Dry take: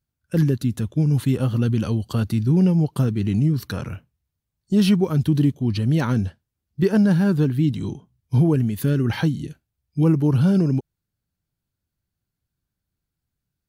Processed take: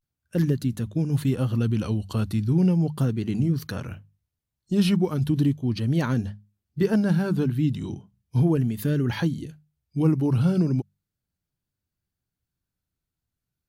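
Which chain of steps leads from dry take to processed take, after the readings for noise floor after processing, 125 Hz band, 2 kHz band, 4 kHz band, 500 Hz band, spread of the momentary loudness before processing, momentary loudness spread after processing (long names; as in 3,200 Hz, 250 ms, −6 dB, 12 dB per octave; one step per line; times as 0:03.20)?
below −85 dBFS, −4.0 dB, −3.0 dB, −3.0 dB, −3.0 dB, 12 LU, 13 LU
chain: mains-hum notches 50/100/150/200 Hz
pitch vibrato 0.36 Hz 62 cents
level −3 dB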